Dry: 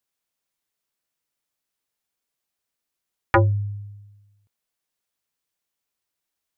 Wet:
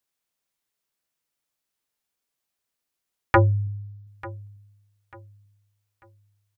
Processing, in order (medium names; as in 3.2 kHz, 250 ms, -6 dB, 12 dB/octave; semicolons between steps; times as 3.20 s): 3.67–4.07 s: static phaser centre 2.4 kHz, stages 6; on a send: feedback delay 893 ms, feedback 33%, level -20 dB